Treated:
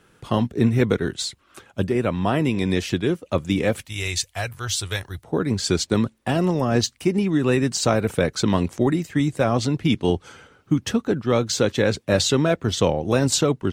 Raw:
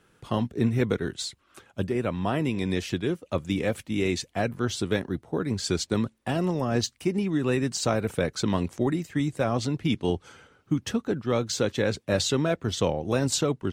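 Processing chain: 3.85–5.24 EQ curve 100 Hz 0 dB, 220 Hz -22 dB, 770 Hz -6 dB, 12000 Hz +8 dB; gain +5.5 dB

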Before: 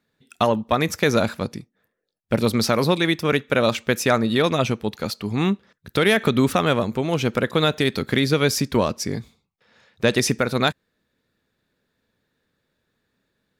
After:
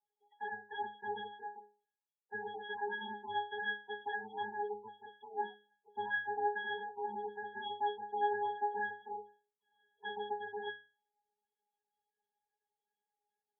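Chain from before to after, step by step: self-modulated delay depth 0.61 ms; in parallel at -4 dB: soft clip -16.5 dBFS, distortion -10 dB; on the sum: ring modulator 550 Hz; octave resonator G#, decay 0.35 s; loudest bins only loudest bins 16; BPF 730–3100 Hz; gain +4 dB

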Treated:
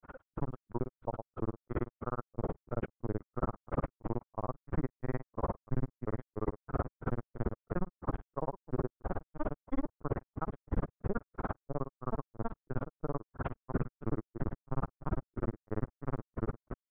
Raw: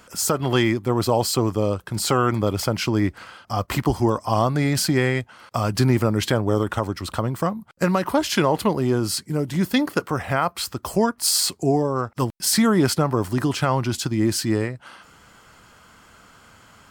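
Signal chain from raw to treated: diffused feedback echo 1.156 s, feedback 40%, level -4.5 dB; compressor 6:1, threshold -30 dBFS, peak gain reduction 16.5 dB; dynamic EQ 130 Hz, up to +4 dB, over -51 dBFS, Q 4.2; LPC vocoder at 8 kHz pitch kept; grains 47 ms, grains 18/s, pitch spread up and down by 0 st; LPF 1500 Hz 24 dB/oct; grains 0.235 s, grains 3/s, pitch spread up and down by 0 st; limiter -30 dBFS, peak gain reduction 9.5 dB; gain +10 dB

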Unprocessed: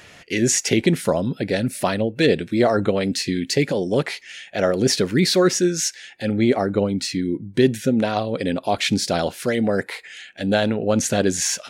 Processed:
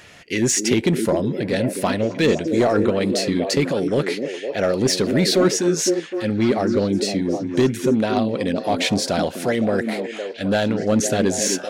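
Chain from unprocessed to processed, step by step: in parallel at -7.5 dB: wavefolder -13.5 dBFS; on the sum: delay with a stepping band-pass 0.256 s, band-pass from 290 Hz, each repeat 0.7 oct, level -3 dB; gain -3 dB

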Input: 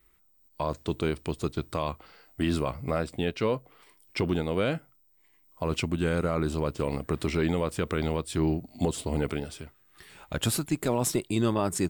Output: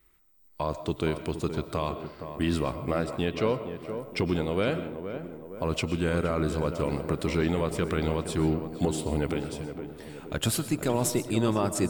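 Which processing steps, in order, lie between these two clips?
tape echo 0.468 s, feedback 61%, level -7 dB, low-pass 1200 Hz; on a send at -12 dB: reverb RT60 0.70 s, pre-delay 80 ms

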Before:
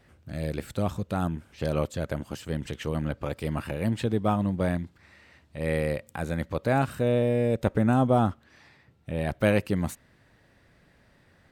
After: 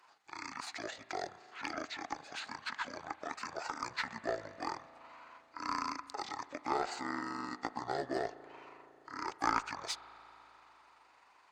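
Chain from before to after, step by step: delay-line pitch shifter -11 st; HPF 990 Hz 12 dB/oct; notch 3200 Hz, Q 24; in parallel at -5 dB: one-sided clip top -38.5 dBFS; on the sum: reverb RT60 4.0 s, pre-delay 36 ms, DRR 15.5 dB; gain +1.5 dB

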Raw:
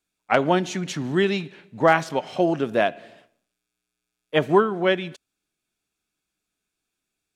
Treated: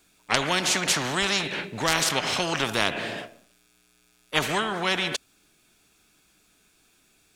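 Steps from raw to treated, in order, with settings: spectral compressor 4:1; gain +2 dB

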